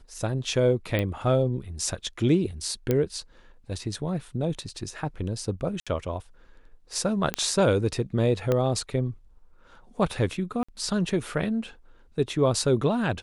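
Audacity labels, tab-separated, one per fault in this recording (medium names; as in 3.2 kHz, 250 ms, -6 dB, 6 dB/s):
0.990000	0.990000	pop -14 dBFS
2.910000	2.910000	pop -11 dBFS
5.800000	5.870000	dropout 66 ms
7.340000	7.340000	pop -9 dBFS
8.520000	8.520000	pop -12 dBFS
10.630000	10.690000	dropout 55 ms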